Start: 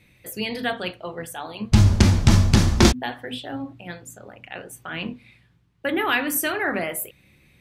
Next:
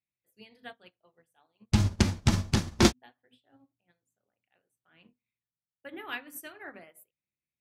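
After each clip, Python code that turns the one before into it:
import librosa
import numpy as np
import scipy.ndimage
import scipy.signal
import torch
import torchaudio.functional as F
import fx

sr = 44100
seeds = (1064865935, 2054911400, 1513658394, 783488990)

y = fx.low_shelf(x, sr, hz=68.0, db=-9.0)
y = fx.upward_expand(y, sr, threshold_db=-37.0, expansion=2.5)
y = y * 10.0 ** (-3.0 / 20.0)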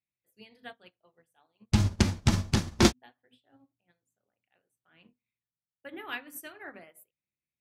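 y = x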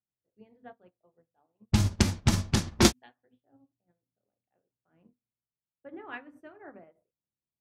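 y = fx.env_lowpass(x, sr, base_hz=710.0, full_db=-20.0)
y = fx.high_shelf(y, sr, hz=6700.0, db=8.5)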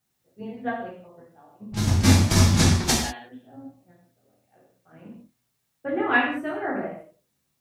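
y = fx.over_compress(x, sr, threshold_db=-29.0, ratio=-0.5)
y = fx.rev_gated(y, sr, seeds[0], gate_ms=220, shape='falling', drr_db=-5.0)
y = y * 10.0 ** (8.0 / 20.0)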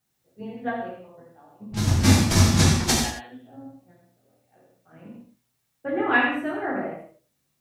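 y = x + 10.0 ** (-7.5 / 20.0) * np.pad(x, (int(82 * sr / 1000.0), 0))[:len(x)]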